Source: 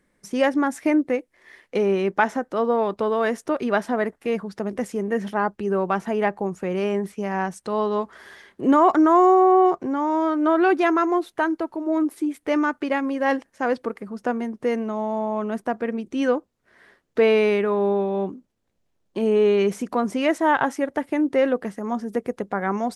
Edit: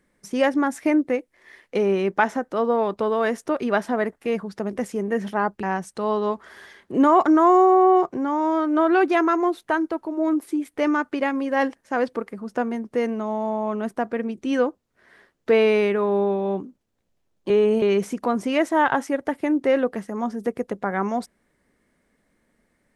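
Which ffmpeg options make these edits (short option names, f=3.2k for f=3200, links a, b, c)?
-filter_complex "[0:a]asplit=4[a][b][c][d];[a]atrim=end=5.632[e];[b]atrim=start=7.318:end=19.192[f];[c]atrim=start=19.188:end=19.512,asetpts=PTS-STARTPTS,areverse[g];[d]atrim=start=19.508[h];[e][f]acrossfade=d=0.004:c1=hsin:c2=hsin[i];[i][g]acrossfade=d=0.004:c1=hsin:c2=hsin[j];[j][h]acrossfade=d=0.004:c1=hsin:c2=hsin"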